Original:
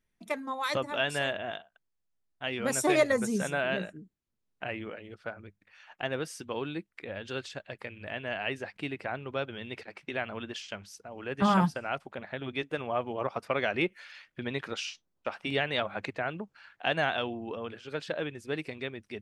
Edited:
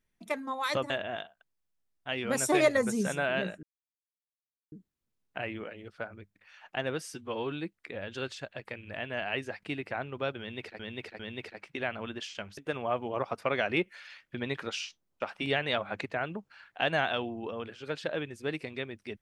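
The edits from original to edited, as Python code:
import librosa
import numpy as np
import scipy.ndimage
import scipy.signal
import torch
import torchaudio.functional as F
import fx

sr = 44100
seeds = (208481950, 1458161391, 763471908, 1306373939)

y = fx.edit(x, sr, fx.cut(start_s=0.9, length_s=0.35),
    fx.insert_silence(at_s=3.98, length_s=1.09),
    fx.stretch_span(start_s=6.4, length_s=0.25, factor=1.5),
    fx.repeat(start_s=9.53, length_s=0.4, count=3),
    fx.cut(start_s=10.91, length_s=1.71), tone=tone)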